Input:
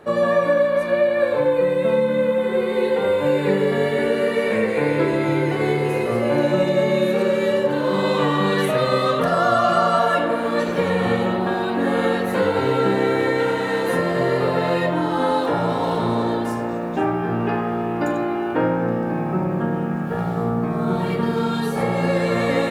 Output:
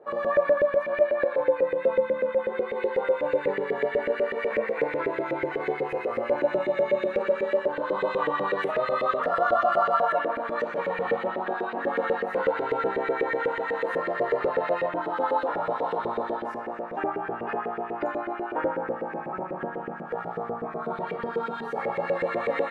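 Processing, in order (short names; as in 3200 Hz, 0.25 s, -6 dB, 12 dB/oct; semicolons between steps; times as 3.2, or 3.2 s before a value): LFO band-pass saw up 8.1 Hz 420–2200 Hz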